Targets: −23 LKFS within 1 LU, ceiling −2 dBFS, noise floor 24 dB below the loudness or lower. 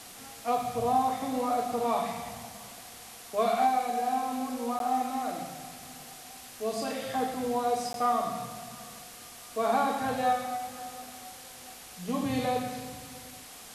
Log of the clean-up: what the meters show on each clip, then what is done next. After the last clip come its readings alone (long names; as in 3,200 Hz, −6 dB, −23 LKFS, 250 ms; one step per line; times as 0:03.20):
number of dropouts 2; longest dropout 12 ms; background noise floor −47 dBFS; target noise floor −55 dBFS; integrated loudness −30.5 LKFS; sample peak −15.0 dBFS; target loudness −23.0 LKFS
→ repair the gap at 0:04.79/0:07.93, 12 ms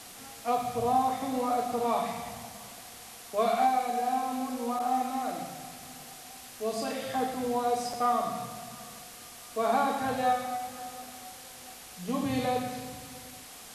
number of dropouts 0; background noise floor −47 dBFS; target noise floor −55 dBFS
→ noise reduction from a noise print 8 dB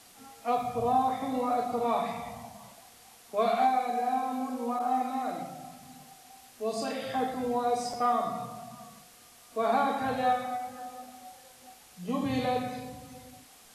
background noise floor −55 dBFS; integrated loudness −30.5 LKFS; sample peak −15.0 dBFS; target loudness −23.0 LKFS
→ level +7.5 dB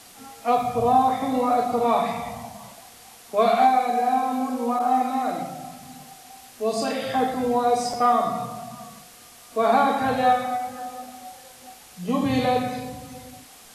integrated loudness −23.0 LKFS; sample peak −7.5 dBFS; background noise floor −48 dBFS